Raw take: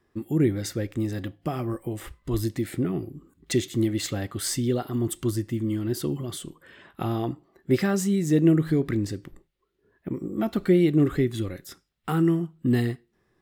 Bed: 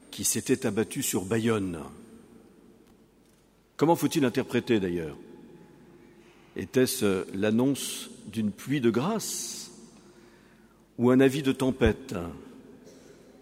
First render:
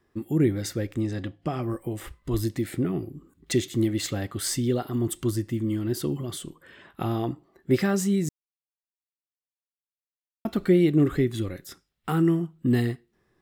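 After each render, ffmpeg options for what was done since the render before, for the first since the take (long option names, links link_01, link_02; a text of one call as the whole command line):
ffmpeg -i in.wav -filter_complex "[0:a]asettb=1/sr,asplit=3[link_01][link_02][link_03];[link_01]atrim=end=1.004[link_04];[link_02]atrim=start=1:end=1.63,asetpts=PTS-STARTPTS,afade=type=in:duration=0.004:curve=qsin,afade=type=out:start_time=0.626:duration=0.004:curve=qsin,lowpass=7500[link_05];[link_03]atrim=start=1.626[link_06];[link_04][link_05]acrossfade=duration=0.004:curve1=hsin:curve2=qsin[link_07];[link_07][link_06]acrossfade=duration=0.004:curve1=qsin:curve2=hsin,asplit=3[link_08][link_09][link_10];[link_08]atrim=end=8.29,asetpts=PTS-STARTPTS,afade=type=out:start_time=8.286:duration=0.004:curve=hsin[link_11];[link_09]atrim=start=8.29:end=10.45,asetpts=PTS-STARTPTS,volume=0[link_12];[link_10]atrim=start=10.45,asetpts=PTS-STARTPTS,afade=type=in:duration=0.004:curve=hsin[link_13];[link_11][link_12][link_13]concat=n=3:v=0:a=1" out.wav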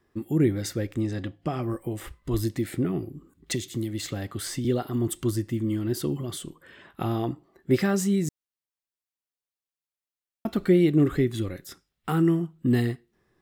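ffmpeg -i in.wav -filter_complex "[0:a]asettb=1/sr,asplit=3[link_01][link_02][link_03];[link_01]atrim=end=3.534[link_04];[link_02]atrim=start=3.53:end=4.65,asetpts=PTS-STARTPTS,afade=type=in:duration=0.004:curve=qsin,afade=type=out:start_time=1.116:duration=0.004:curve=qsin,acrossover=split=200|3500[link_05][link_06][link_07];[link_05]acompressor=threshold=-31dB:ratio=4[link_08];[link_06]acompressor=threshold=-32dB:ratio=4[link_09];[link_07]acompressor=threshold=-35dB:ratio=4[link_10];[link_08][link_09][link_10]amix=inputs=3:normalize=0[link_11];[link_03]atrim=start=4.646[link_12];[link_04][link_11]acrossfade=duration=0.004:curve1=hsin:curve2=qsin[link_13];[link_13][link_12]acrossfade=duration=0.004:curve1=qsin:curve2=hsin" out.wav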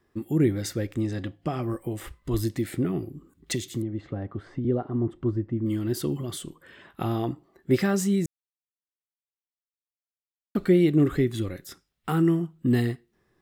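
ffmpeg -i in.wav -filter_complex "[0:a]asettb=1/sr,asplit=3[link_01][link_02][link_03];[link_01]atrim=end=3.824[link_04];[link_02]atrim=start=3.82:end=5.66,asetpts=PTS-STARTPTS,afade=type=in:duration=0.004:curve=qsin,afade=type=out:start_time=1.836:duration=0.004:curve=qsin,lowpass=1100[link_05];[link_03]atrim=start=5.656[link_06];[link_04][link_05]acrossfade=duration=0.004:curve1=hsin:curve2=qsin[link_07];[link_07][link_06]acrossfade=duration=0.004:curve1=qsin:curve2=hsin,asplit=3[link_08][link_09][link_10];[link_08]atrim=end=8.26,asetpts=PTS-STARTPTS,afade=type=out:start_time=8.256:duration=0.004:curve=hsin[link_11];[link_09]atrim=start=8.26:end=10.55,asetpts=PTS-STARTPTS,volume=0[link_12];[link_10]atrim=start=10.55,asetpts=PTS-STARTPTS,afade=type=in:duration=0.004:curve=hsin[link_13];[link_11][link_12][link_13]concat=n=3:v=0:a=1" out.wav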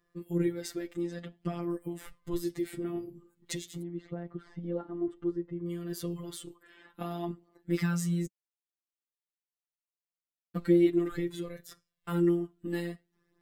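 ffmpeg -i in.wav -af "afftfilt=real='hypot(re,im)*cos(PI*b)':imag='0':win_size=1024:overlap=0.75,flanger=delay=1.7:depth=6.8:regen=-18:speed=0.17:shape=sinusoidal" out.wav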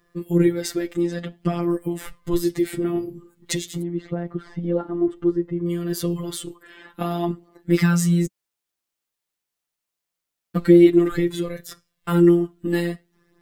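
ffmpeg -i in.wav -af "volume=11.5dB,alimiter=limit=-3dB:level=0:latency=1" out.wav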